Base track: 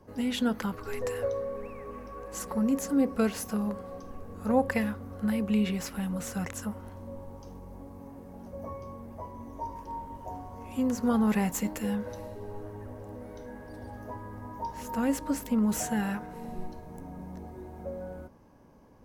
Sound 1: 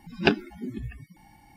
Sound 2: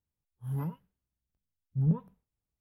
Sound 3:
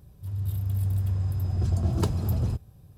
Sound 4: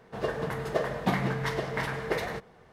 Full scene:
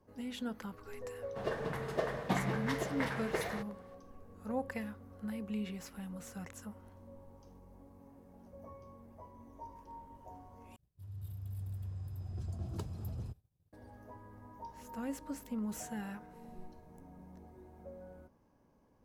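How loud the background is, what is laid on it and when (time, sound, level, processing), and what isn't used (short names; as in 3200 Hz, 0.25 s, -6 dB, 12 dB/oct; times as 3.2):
base track -12 dB
1.23 add 4 -6 dB
10.76 replace with 3 -15.5 dB + expander -43 dBFS
not used: 1, 2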